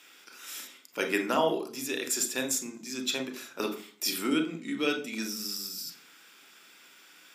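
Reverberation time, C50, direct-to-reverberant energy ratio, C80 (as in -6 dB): 0.45 s, 11.0 dB, 5.0 dB, 16.5 dB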